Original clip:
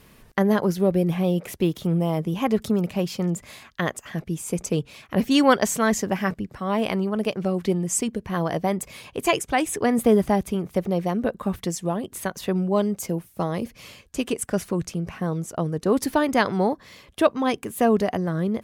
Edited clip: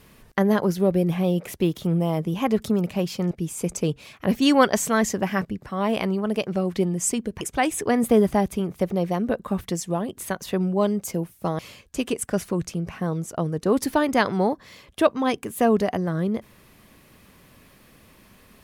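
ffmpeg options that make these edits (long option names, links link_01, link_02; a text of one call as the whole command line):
ffmpeg -i in.wav -filter_complex "[0:a]asplit=4[link_01][link_02][link_03][link_04];[link_01]atrim=end=3.312[link_05];[link_02]atrim=start=4.198:end=8.302[link_06];[link_03]atrim=start=9.358:end=13.542[link_07];[link_04]atrim=start=13.788[link_08];[link_05][link_06]acrossfade=duration=0.004:curve1=hsin:curve2=hsin[link_09];[link_09][link_07]acrossfade=duration=0.004:curve1=hsin:curve2=hsin[link_10];[link_10][link_08]acrossfade=duration=0.004:curve1=hsin:curve2=hsin" out.wav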